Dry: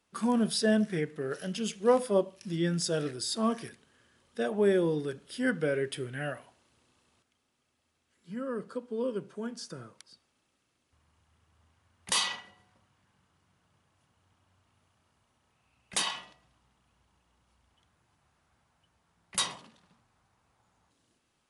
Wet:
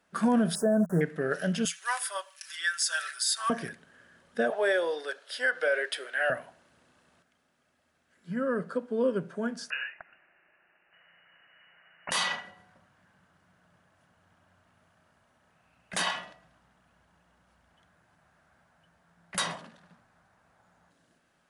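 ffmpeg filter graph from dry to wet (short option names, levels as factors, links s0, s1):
-filter_complex "[0:a]asettb=1/sr,asplit=3[s0][s1][s2];[s0]atrim=end=0.554[s3];[s1]atrim=start=0.55:end=1.01,asetpts=PTS-STARTPTS,afade=t=in:d=0.004:c=qsin,afade=t=out:st=0.456:d=0.004:c=qsin,aeval=exprs='val(0)*gte(abs(val(0)),0.01)':c=same,asuperstop=centerf=3100:order=8:qfactor=0.56[s4];[s2]atrim=start=1.006[s5];[s3][s4]acrossfade=d=0.004:c1=hsin:c2=qsin[s6];[s6][s5]acrossfade=d=0.004:c1=qsin:c2=hsin,asettb=1/sr,asplit=3[s7][s8][s9];[s7]atrim=end=1.654[s10];[s8]atrim=start=1.65:end=3.5,asetpts=PTS-STARTPTS,afade=t=in:d=0.004:c=qsin,afade=t=out:st=1.846:d=0.004:c=qsin,highpass=f=1200:w=0.5412,highpass=f=1200:w=1.3066,highshelf=f=5100:g=11.5,aecho=1:1:5.2:0.59,atrim=end_sample=81585[s11];[s9]atrim=start=3.496[s12];[s10][s11]acrossfade=d=0.004:c1=hsin:c2=qsin[s13];[s13][s12]acrossfade=d=0.004:c1=qsin:c2=hsin,asettb=1/sr,asplit=3[s14][s15][s16];[s14]atrim=end=4.504[s17];[s15]atrim=start=4.5:end=6.3,asetpts=PTS-STARTPTS,afade=t=in:d=0.004:c=qsin,afade=t=out:st=1.796:d=0.004:c=qsin,highpass=f=520:w=0.5412,highpass=f=520:w=1.3066,equalizer=f=4200:w=1.3:g=7.5[s18];[s16]atrim=start=6.296[s19];[s17][s18]acrossfade=d=0.004:c1=hsin:c2=qsin[s20];[s20][s19]acrossfade=d=0.004:c1=qsin:c2=hsin,asettb=1/sr,asplit=3[s21][s22][s23];[s21]atrim=end=9.704[s24];[s22]atrim=start=9.7:end=12.11,asetpts=PTS-STARTPTS,afade=t=in:d=0.004:c=qsin,afade=t=out:st=2.406:d=0.004:c=qsin,lowshelf=f=320:g=-7.5,acontrast=82,lowpass=f=2600:t=q:w=0.5098,lowpass=f=2600:t=q:w=0.6013,lowpass=f=2600:t=q:w=0.9,lowpass=f=2600:t=q:w=2.563,afreqshift=-3000[s25];[s23]atrim=start=12.106[s26];[s24][s25]acrossfade=d=0.004:c1=hsin:c2=qsin[s27];[s27][s26]acrossfade=d=0.004:c1=qsin:c2=hsin,equalizer=f=250:t=o:w=0.67:g=4,equalizer=f=630:t=o:w=0.67:g=10,equalizer=f=1600:t=o:w=0.67:g=11,alimiter=limit=0.141:level=0:latency=1:release=78,equalizer=f=170:t=o:w=0.22:g=11"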